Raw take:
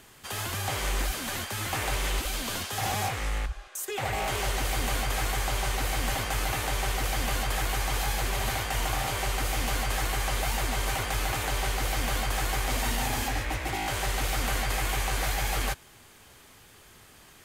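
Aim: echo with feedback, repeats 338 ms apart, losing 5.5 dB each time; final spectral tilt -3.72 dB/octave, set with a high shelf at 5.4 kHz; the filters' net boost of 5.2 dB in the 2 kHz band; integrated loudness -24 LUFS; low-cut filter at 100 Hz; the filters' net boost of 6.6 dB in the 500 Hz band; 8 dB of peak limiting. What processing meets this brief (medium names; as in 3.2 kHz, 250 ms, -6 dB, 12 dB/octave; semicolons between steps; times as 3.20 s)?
high-pass 100 Hz; peaking EQ 500 Hz +8 dB; peaking EQ 2 kHz +6.5 dB; treble shelf 5.4 kHz -5 dB; peak limiter -22 dBFS; feedback delay 338 ms, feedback 53%, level -5.5 dB; trim +5 dB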